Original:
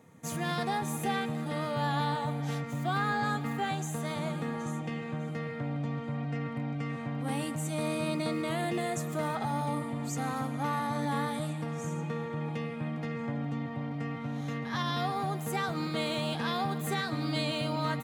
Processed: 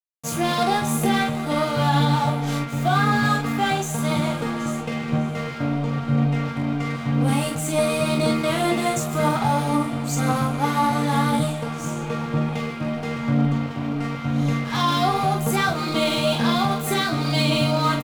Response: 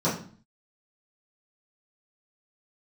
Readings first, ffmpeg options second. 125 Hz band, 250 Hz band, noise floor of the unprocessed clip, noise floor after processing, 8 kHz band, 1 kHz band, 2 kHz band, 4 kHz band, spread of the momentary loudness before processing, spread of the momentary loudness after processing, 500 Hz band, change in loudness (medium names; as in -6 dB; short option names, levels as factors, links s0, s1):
+10.5 dB, +11.0 dB, -38 dBFS, -30 dBFS, +11.5 dB, +10.5 dB, +10.0 dB, +11.5 dB, 5 LU, 7 LU, +10.5 dB, +11.0 dB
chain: -af "aphaser=in_gain=1:out_gain=1:delay=3.6:decay=0.38:speed=0.97:type=triangular,aeval=exprs='sgn(val(0))*max(abs(val(0))-0.00631,0)':c=same,bandreject=f=1800:w=7.9,aecho=1:1:21|44:0.501|0.562,alimiter=level_in=8.91:limit=0.891:release=50:level=0:latency=1,volume=0.376"